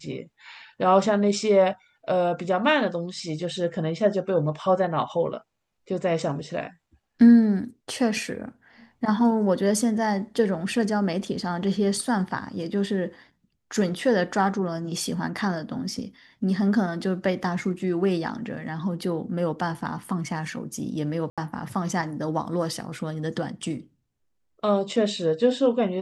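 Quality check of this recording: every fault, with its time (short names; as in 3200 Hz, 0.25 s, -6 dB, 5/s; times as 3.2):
21.3–21.38 gap 76 ms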